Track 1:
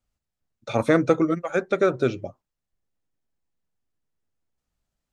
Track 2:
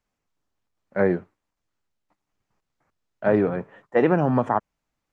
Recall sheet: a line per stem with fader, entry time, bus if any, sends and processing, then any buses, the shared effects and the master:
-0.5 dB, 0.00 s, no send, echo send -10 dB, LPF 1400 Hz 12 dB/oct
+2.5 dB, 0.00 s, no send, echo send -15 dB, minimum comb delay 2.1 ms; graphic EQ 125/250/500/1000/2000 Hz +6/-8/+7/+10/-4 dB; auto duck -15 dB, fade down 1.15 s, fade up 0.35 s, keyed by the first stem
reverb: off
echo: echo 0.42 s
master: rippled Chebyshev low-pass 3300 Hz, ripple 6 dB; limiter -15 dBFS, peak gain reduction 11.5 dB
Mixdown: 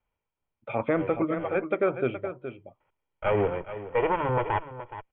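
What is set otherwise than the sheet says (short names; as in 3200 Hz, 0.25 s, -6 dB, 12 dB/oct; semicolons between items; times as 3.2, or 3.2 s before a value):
stem 1: missing LPF 1400 Hz 12 dB/oct; stem 2: missing graphic EQ 125/250/500/1000/2000 Hz +6/-8/+7/+10/-4 dB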